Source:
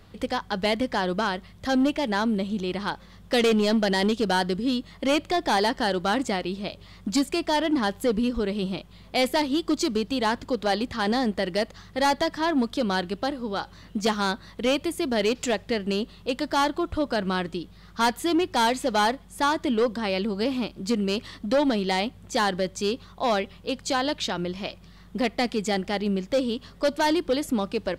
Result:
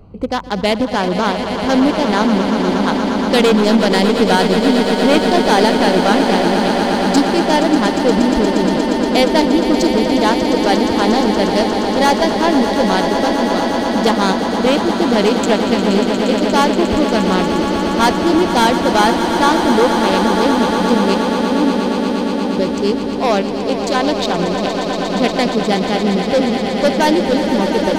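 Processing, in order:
adaptive Wiener filter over 25 samples
0:21.14–0:22.57: formant resonators in series u
in parallel at −8 dB: soft clipping −26.5 dBFS, distortion −10 dB
on the sum: echo that builds up and dies away 118 ms, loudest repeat 8, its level −10.5 dB
level +7.5 dB

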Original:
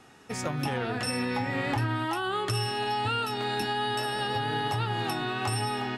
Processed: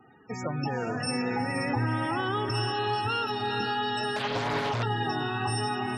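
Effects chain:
spectral peaks only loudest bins 32
feedback delay with all-pass diffusion 461 ms, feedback 47%, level −7 dB
0:04.16–0:04.83: highs frequency-modulated by the lows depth 0.73 ms

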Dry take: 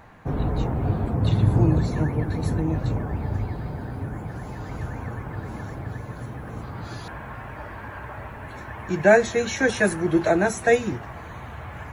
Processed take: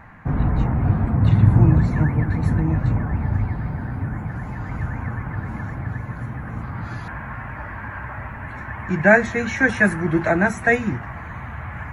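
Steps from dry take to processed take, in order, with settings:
drawn EQ curve 230 Hz 0 dB, 420 Hz −10 dB, 930 Hz −2 dB, 2,000 Hz +2 dB, 3,500 Hz −12 dB
level +5.5 dB

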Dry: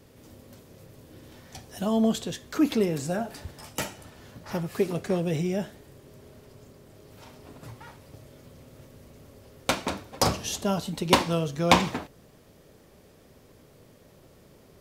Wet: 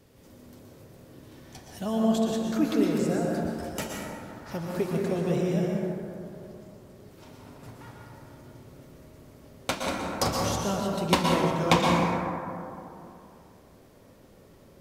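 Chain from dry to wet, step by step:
dense smooth reverb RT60 2.7 s, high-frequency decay 0.3×, pre-delay 105 ms, DRR −1.5 dB
level −4 dB

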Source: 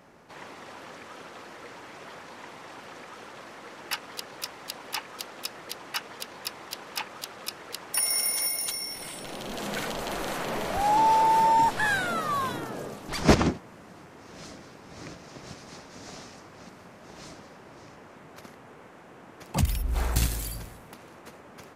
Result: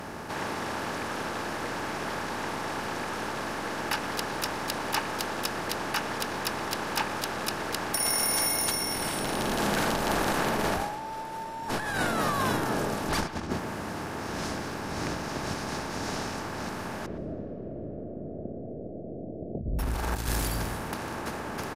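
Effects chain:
compressor on every frequency bin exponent 0.6
compressor whose output falls as the input rises −24 dBFS, ratio −0.5
0:17.06–0:19.79: Butterworth low-pass 680 Hz 96 dB per octave
far-end echo of a speakerphone 120 ms, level −13 dB
comb and all-pass reverb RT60 4.7 s, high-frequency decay 0.55×, pre-delay 115 ms, DRR 20 dB
saturating transformer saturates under 140 Hz
level −3 dB

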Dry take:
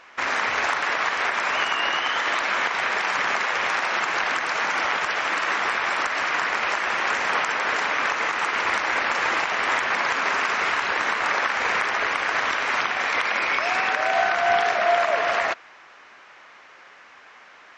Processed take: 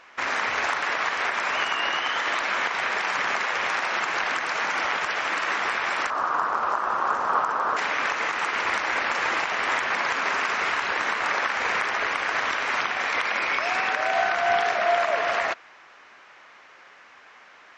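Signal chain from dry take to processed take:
0:06.10–0:07.77: high shelf with overshoot 1,600 Hz −9.5 dB, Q 3
level −2 dB

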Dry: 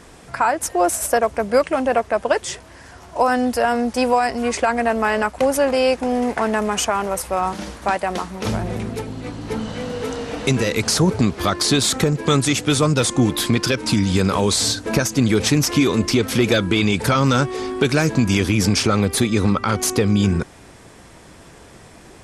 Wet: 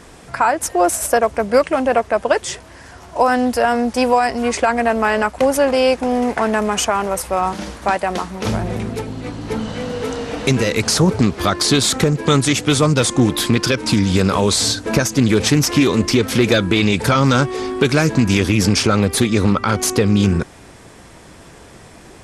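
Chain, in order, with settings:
highs frequency-modulated by the lows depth 0.16 ms
level +2.5 dB

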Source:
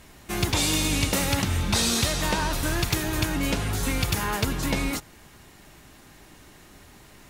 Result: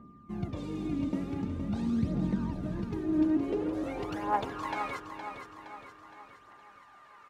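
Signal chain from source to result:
band-pass filter sweep 220 Hz → 1,200 Hz, 0:02.86–0:04.79
phase shifter 0.46 Hz, delay 3.4 ms, feedback 61%
steady tone 1,200 Hz −57 dBFS
on a send: repeating echo 466 ms, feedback 51%, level −8 dB

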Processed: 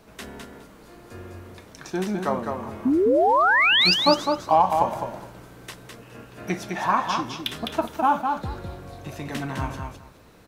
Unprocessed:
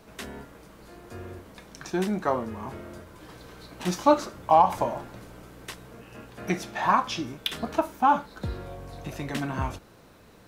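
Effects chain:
0:02.90–0:03.70: lower of the sound and its delayed copy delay 2.9 ms
0:02.85–0:03.94: sound drawn into the spectrogram rise 240–5,200 Hz −19 dBFS
repeating echo 207 ms, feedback 18%, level −5 dB

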